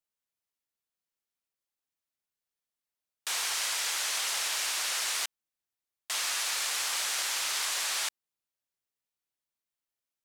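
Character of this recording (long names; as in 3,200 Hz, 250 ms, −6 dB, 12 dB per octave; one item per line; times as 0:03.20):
background noise floor −91 dBFS
spectral slope +1.0 dB per octave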